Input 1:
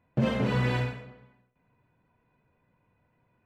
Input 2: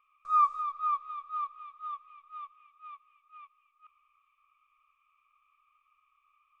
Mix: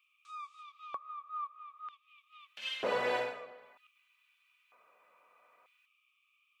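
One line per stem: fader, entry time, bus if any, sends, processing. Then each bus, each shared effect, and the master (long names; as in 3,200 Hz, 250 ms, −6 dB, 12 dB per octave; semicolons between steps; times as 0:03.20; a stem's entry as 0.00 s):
−3.0 dB, 2.40 s, no send, high-pass filter 120 Hz
−7.0 dB, 0.00 s, no send, no processing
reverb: not used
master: auto-filter high-pass square 0.53 Hz 570–3,000 Hz; one half of a high-frequency compander encoder only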